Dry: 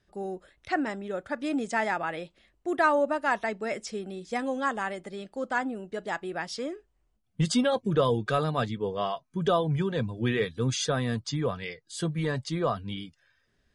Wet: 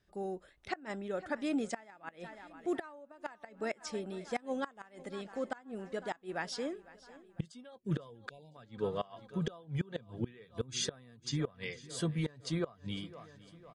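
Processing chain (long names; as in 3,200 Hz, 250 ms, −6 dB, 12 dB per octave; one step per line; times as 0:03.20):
repeating echo 503 ms, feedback 57%, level −20 dB
gate with flip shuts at −19 dBFS, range −24 dB
time-frequency box erased 0:08.30–0:08.55, 1,000–2,200 Hz
level −4 dB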